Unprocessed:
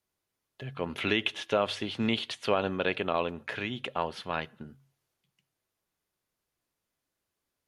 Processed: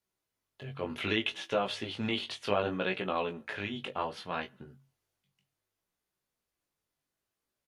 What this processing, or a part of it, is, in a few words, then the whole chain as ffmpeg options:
double-tracked vocal: -filter_complex "[0:a]asplit=2[s0][s1];[s1]adelay=21,volume=0.266[s2];[s0][s2]amix=inputs=2:normalize=0,flanger=delay=15.5:depth=5.3:speed=0.65"

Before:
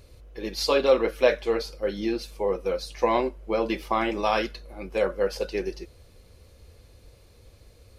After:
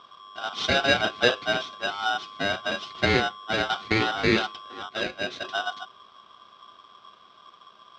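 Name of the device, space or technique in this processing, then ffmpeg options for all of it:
ring modulator pedal into a guitar cabinet: -filter_complex "[0:a]asettb=1/sr,asplit=3[s0][s1][s2];[s0]atrim=end=4.894[s3];[s1]atrim=start=4.89:end=5.44,asetpts=PTS-STARTPTS,afade=t=in:d=0.004:c=qsin,afade=t=out:st=0.546:d=0.004:c=qsin,equalizer=f=97:w=0.32:g=-13[s4];[s2]atrim=start=5.436[s5];[s3][s4]acrossfade=d=0.004:c1=hsin:c2=qsin[s6];[s6][s5]acrossfade=d=0.004:c1=qsin:c2=hsin,aeval=exprs='val(0)*sgn(sin(2*PI*1100*n/s))':c=same,highpass=93,equalizer=f=210:t=q:w=4:g=5,equalizer=f=380:t=q:w=4:g=5,equalizer=f=570:t=q:w=4:g=-10,equalizer=f=940:t=q:w=4:g=-8,equalizer=f=1700:t=q:w=4:g=-10,equalizer=f=2800:t=q:w=4:g=-4,lowpass=f=4000:w=0.5412,lowpass=f=4000:w=1.3066,volume=1.78"

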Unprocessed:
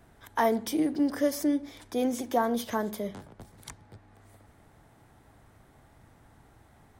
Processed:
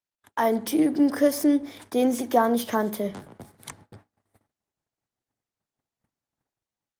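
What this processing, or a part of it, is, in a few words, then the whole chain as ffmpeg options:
video call: -af "highpass=120,dynaudnorm=f=360:g=3:m=2,agate=range=0.00708:threshold=0.00398:ratio=16:detection=peak" -ar 48000 -c:a libopus -b:a 32k

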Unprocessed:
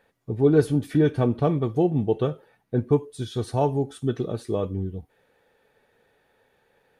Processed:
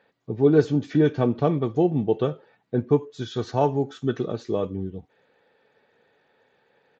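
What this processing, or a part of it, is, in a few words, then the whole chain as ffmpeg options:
Bluetooth headset: -filter_complex "[0:a]asettb=1/sr,asplit=3[s0][s1][s2];[s0]atrim=end=3.014[s3];[s1]atrim=start=3.01:end=4.32,asetpts=PTS-STARTPTS,afade=t=in:d=0.004:c=qsin,afade=t=out:st=1.306:d=0.004:c=qsin,equalizer=f=1500:w=1.4:g=5[s4];[s2]atrim=start=4.316[s5];[s3][s4]acrossfade=d=0.004:c1=hsin:c2=qsin[s6];[s6][s5]acrossfade=d=0.004:c1=qsin:c2=hsin,highpass=130,aresample=16000,aresample=44100,volume=1.12" -ar 16000 -c:a sbc -b:a 64k

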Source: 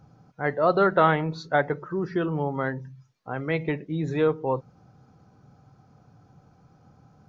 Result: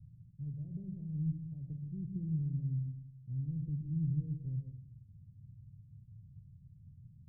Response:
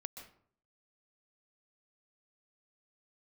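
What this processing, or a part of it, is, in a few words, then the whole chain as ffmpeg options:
club heard from the street: -filter_complex "[0:a]alimiter=limit=0.141:level=0:latency=1,lowpass=f=130:w=0.5412,lowpass=f=130:w=1.3066[s0];[1:a]atrim=start_sample=2205[s1];[s0][s1]afir=irnorm=-1:irlink=0,volume=2.51"

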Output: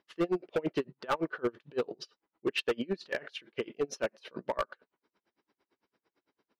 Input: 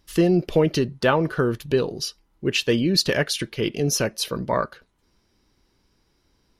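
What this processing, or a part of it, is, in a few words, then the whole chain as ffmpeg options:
helicopter radio: -af "highpass=330,lowpass=2500,aeval=exprs='val(0)*pow(10,-32*(0.5-0.5*cos(2*PI*8.9*n/s))/20)':c=same,asoftclip=type=hard:threshold=0.0668"

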